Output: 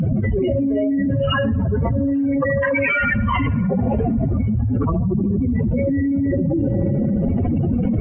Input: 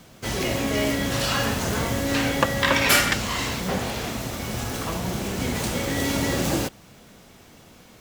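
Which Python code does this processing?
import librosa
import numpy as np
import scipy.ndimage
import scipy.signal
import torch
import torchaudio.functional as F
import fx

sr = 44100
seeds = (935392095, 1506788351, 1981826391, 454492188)

p1 = fx.spec_expand(x, sr, power=3.8)
p2 = fx.brickwall_lowpass(p1, sr, high_hz=3200.0)
p3 = fx.peak_eq(p2, sr, hz=95.0, db=3.5, octaves=0.39)
p4 = fx.hum_notches(p3, sr, base_hz=60, count=3)
p5 = p4 + fx.echo_wet_bandpass(p4, sr, ms=75, feedback_pct=79, hz=700.0, wet_db=-23, dry=0)
p6 = fx.env_flatten(p5, sr, amount_pct=100)
y = F.gain(torch.from_numpy(p6), -2.0).numpy()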